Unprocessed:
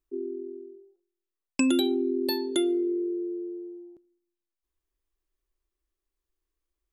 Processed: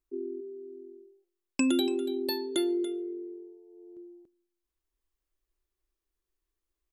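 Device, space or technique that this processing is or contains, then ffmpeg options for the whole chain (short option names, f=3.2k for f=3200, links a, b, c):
ducked delay: -filter_complex "[0:a]asplit=3[a][b][c];[b]adelay=285,volume=-3dB[d];[c]apad=whole_len=318089[e];[d][e]sidechaincompress=threshold=-34dB:ratio=6:attack=45:release=1020[f];[a][f]amix=inputs=2:normalize=0,volume=-2.5dB"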